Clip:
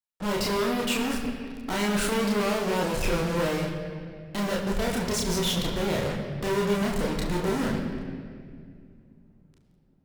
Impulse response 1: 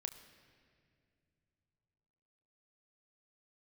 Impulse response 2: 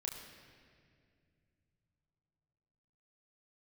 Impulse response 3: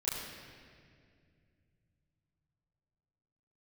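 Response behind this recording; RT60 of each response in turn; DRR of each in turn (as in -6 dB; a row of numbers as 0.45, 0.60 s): 2; not exponential, 2.2 s, 2.2 s; 6.0, -2.5, -12.0 dB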